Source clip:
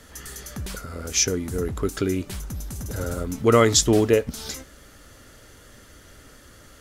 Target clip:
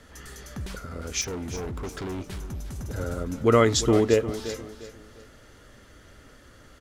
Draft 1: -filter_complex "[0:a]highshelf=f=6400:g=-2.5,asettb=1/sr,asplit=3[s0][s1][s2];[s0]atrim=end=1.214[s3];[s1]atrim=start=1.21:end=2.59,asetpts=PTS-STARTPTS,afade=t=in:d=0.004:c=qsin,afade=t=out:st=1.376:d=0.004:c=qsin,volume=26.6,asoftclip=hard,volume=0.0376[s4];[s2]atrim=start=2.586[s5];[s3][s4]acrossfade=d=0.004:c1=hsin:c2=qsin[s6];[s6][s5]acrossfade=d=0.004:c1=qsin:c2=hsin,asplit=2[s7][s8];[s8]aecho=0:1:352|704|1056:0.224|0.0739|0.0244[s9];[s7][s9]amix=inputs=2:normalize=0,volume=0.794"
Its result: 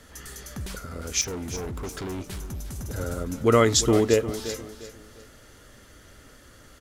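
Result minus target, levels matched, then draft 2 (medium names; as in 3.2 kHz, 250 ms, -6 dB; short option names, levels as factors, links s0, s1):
8 kHz band +4.0 dB
-filter_complex "[0:a]highshelf=f=6400:g=-11.5,asettb=1/sr,asplit=3[s0][s1][s2];[s0]atrim=end=1.214[s3];[s1]atrim=start=1.21:end=2.59,asetpts=PTS-STARTPTS,afade=t=in:d=0.004:c=qsin,afade=t=out:st=1.376:d=0.004:c=qsin,volume=26.6,asoftclip=hard,volume=0.0376[s4];[s2]atrim=start=2.586[s5];[s3][s4]acrossfade=d=0.004:c1=hsin:c2=qsin[s6];[s6][s5]acrossfade=d=0.004:c1=qsin:c2=hsin,asplit=2[s7][s8];[s8]aecho=0:1:352|704|1056:0.224|0.0739|0.0244[s9];[s7][s9]amix=inputs=2:normalize=0,volume=0.794"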